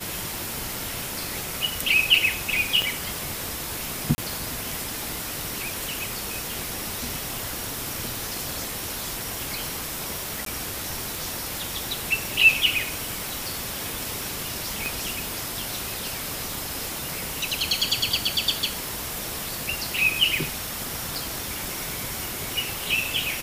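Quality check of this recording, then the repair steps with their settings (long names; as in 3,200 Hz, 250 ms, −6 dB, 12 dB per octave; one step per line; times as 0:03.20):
scratch tick 78 rpm
0:02.82: click −11 dBFS
0:04.15–0:04.18: drop-out 30 ms
0:10.45–0:10.46: drop-out 13 ms
0:14.86: click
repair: click removal
repair the gap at 0:04.15, 30 ms
repair the gap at 0:10.45, 13 ms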